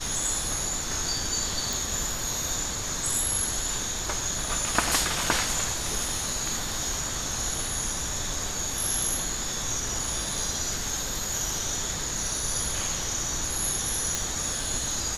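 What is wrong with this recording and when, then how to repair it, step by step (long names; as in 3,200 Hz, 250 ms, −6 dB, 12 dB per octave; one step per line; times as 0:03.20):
0:01.73: click
0:14.15: click −10 dBFS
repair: click removal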